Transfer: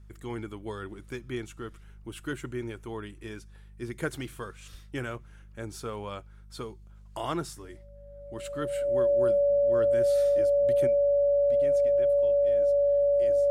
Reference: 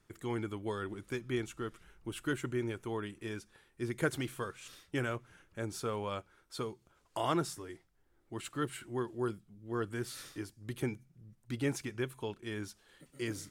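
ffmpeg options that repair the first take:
-filter_complex "[0:a]bandreject=f=50.6:t=h:w=4,bandreject=f=101.2:t=h:w=4,bandreject=f=151.8:t=h:w=4,bandreject=f=202.4:t=h:w=4,bandreject=f=570:w=30,asplit=3[s0][s1][s2];[s0]afade=t=out:st=4.71:d=0.02[s3];[s1]highpass=f=140:w=0.5412,highpass=f=140:w=1.3066,afade=t=in:st=4.71:d=0.02,afade=t=out:st=4.83:d=0.02[s4];[s2]afade=t=in:st=4.83:d=0.02[s5];[s3][s4][s5]amix=inputs=3:normalize=0,asetnsamples=n=441:p=0,asendcmd='10.87 volume volume 10dB',volume=1"

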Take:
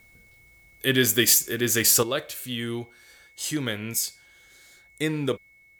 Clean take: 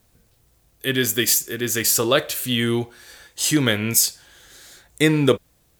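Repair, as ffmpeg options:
-af "bandreject=f=2200:w=30,asetnsamples=n=441:p=0,asendcmd='2.03 volume volume 9.5dB',volume=1"

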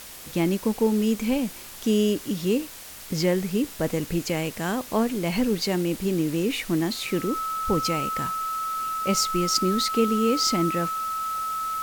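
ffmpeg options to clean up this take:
-af "bandreject=f=1300:w=30,afftdn=nr=29:nf=-41"

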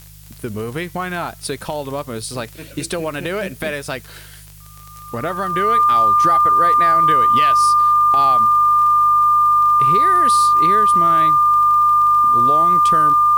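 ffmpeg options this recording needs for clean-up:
-af "adeclick=t=4,bandreject=f=51:t=h:w=4,bandreject=f=102:t=h:w=4,bandreject=f=153:t=h:w=4,bandreject=f=1200:w=30,agate=range=0.0891:threshold=0.0282"

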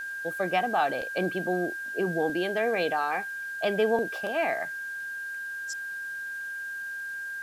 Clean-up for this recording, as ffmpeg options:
-af "adeclick=t=4,bandreject=f=1600:w=30,afwtdn=0.002"

